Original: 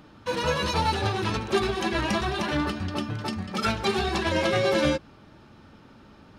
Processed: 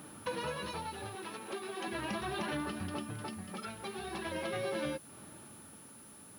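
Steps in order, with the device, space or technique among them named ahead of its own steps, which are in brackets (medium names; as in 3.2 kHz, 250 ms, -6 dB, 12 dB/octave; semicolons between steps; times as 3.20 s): 1.15–1.88 s: high-pass 270 Hz 12 dB/octave; medium wave at night (band-pass 110–4200 Hz; compression, threshold -34 dBFS, peak gain reduction 14 dB; tremolo 0.41 Hz, depth 54%; whistle 10 kHz -54 dBFS; white noise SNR 23 dB)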